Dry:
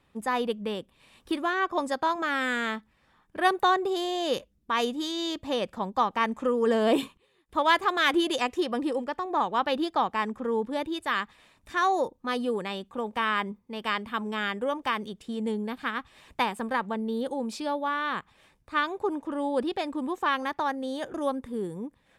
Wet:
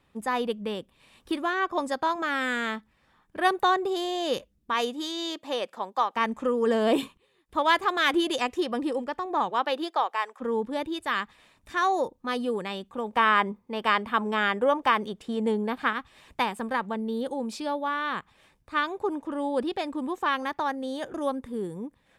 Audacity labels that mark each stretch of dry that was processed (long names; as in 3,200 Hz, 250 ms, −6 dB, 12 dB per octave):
4.730000	6.150000	high-pass filter 240 Hz → 510 Hz
9.490000	10.400000	high-pass filter 240 Hz → 620 Hz 24 dB per octave
13.150000	15.930000	parametric band 820 Hz +7 dB 3 octaves